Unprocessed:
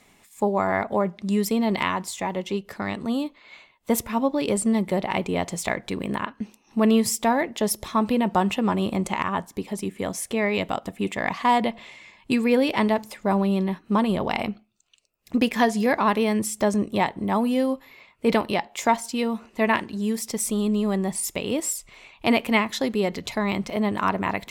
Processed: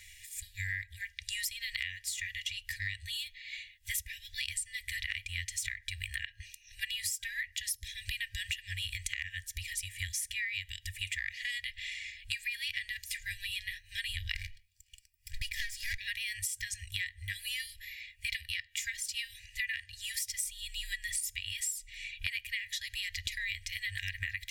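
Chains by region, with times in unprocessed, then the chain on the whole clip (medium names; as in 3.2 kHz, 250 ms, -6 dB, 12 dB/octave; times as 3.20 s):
14.35–15.98 s: comb filter that takes the minimum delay 0.38 ms + peaking EQ 2.7 kHz -7.5 dB 0.28 oct
whole clip: FFT band-reject 100–1600 Hz; comb 2.1 ms, depth 64%; compression 12:1, threshold -38 dBFS; trim +5 dB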